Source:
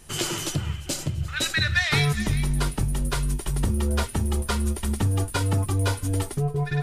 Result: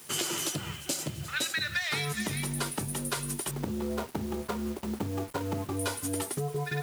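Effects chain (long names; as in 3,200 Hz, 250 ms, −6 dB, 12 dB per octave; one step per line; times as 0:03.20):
0:03.51–0:05.77: running median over 25 samples
high-pass filter 200 Hz 12 dB per octave
high-shelf EQ 8,700 Hz +6.5 dB
downward compressor, threshold −28 dBFS, peak gain reduction 10.5 dB
bit reduction 8 bits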